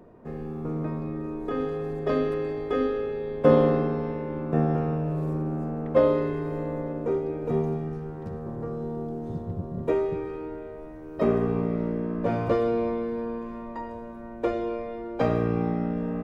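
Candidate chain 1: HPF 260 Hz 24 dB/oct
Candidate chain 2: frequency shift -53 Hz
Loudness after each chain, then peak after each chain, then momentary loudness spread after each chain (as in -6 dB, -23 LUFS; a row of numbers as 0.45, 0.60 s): -29.0, -28.0 LUFS; -8.0, -6.5 dBFS; 15, 13 LU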